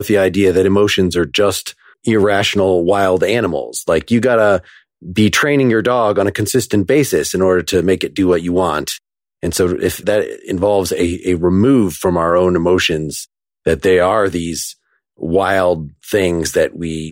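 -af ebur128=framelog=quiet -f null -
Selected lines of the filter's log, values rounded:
Integrated loudness:
  I:         -14.9 LUFS
  Threshold: -25.1 LUFS
Loudness range:
  LRA:         2.8 LU
  Threshold: -35.2 LUFS
  LRA low:   -16.8 LUFS
  LRA high:  -14.1 LUFS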